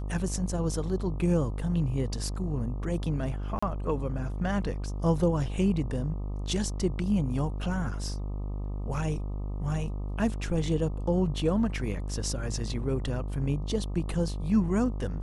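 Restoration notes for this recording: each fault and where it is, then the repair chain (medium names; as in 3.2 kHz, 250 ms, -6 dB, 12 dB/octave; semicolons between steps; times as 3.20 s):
buzz 50 Hz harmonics 25 -33 dBFS
3.59–3.62 s: dropout 35 ms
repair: de-hum 50 Hz, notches 25; interpolate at 3.59 s, 35 ms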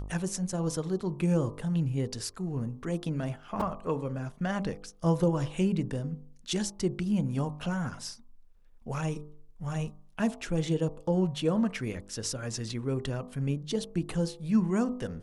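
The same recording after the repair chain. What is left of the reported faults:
nothing left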